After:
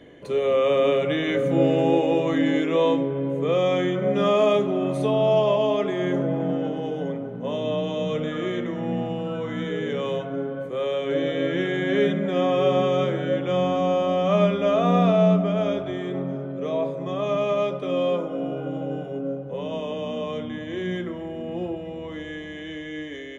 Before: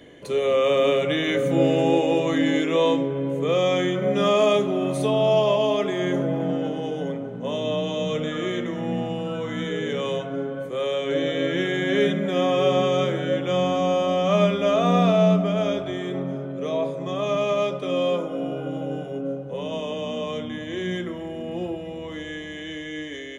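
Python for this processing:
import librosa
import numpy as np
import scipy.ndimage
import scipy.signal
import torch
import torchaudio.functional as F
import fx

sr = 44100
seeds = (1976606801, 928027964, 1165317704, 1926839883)

y = fx.high_shelf(x, sr, hz=3900.0, db=-10.5)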